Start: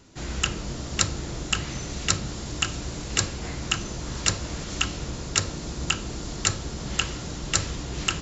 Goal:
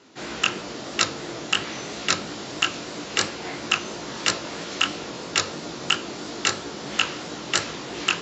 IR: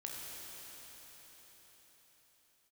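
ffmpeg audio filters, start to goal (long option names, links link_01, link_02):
-af "flanger=delay=17:depth=5.5:speed=3,highpass=290,lowpass=4900,volume=8dB"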